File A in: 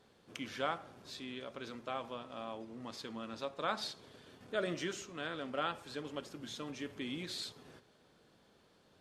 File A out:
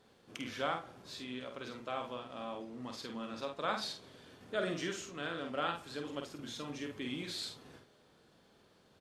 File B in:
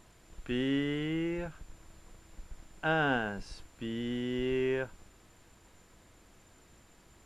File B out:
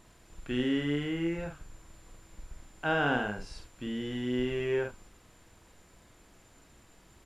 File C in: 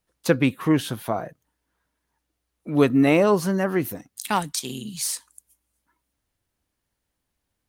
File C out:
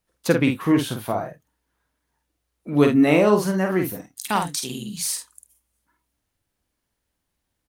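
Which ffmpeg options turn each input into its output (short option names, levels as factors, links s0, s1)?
-af "aecho=1:1:48|76:0.562|0.133"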